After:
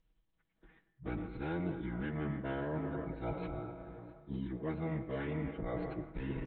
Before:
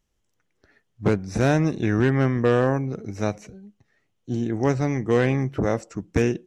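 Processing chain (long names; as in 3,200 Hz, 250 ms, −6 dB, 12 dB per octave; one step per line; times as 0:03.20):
Butterworth low-pass 6,100 Hz 96 dB per octave
convolution reverb RT60 2.7 s, pre-delay 88 ms, DRR 10 dB
reversed playback
downward compressor 12 to 1, threshold −30 dBFS, peak gain reduction 16 dB
reversed playback
parametric band 66 Hz +14 dB 0.47 octaves
on a send: repeating echo 662 ms, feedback 38%, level −23 dB
on the sum: phase-vocoder pitch shift with formants kept −10 semitones
comb filter 6.2 ms, depth 64%
saturating transformer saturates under 110 Hz
level −4.5 dB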